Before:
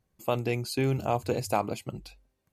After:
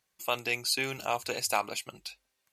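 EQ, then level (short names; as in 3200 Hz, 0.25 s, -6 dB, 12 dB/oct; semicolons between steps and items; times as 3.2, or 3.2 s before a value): tilt shelf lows -10 dB, about 940 Hz; low shelf 180 Hz -10.5 dB; high shelf 9200 Hz -5.5 dB; 0.0 dB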